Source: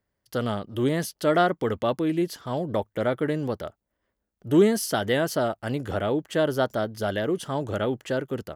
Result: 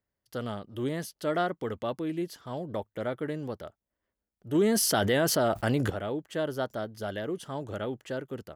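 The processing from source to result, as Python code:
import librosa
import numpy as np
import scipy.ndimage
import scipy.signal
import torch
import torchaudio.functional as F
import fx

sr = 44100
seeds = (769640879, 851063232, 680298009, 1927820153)

y = fx.env_flatten(x, sr, amount_pct=70, at=(4.55, 5.9))
y = y * librosa.db_to_amplitude(-7.5)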